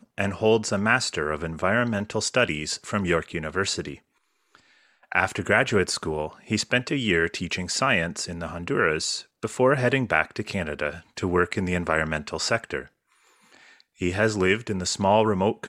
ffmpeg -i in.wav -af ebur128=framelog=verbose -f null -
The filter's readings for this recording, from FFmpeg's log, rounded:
Integrated loudness:
  I:         -24.5 LUFS
  Threshold: -35.1 LUFS
Loudness range:
  LRA:         3.2 LU
  Threshold: -45.5 LUFS
  LRA low:   -27.4 LUFS
  LRA high:  -24.2 LUFS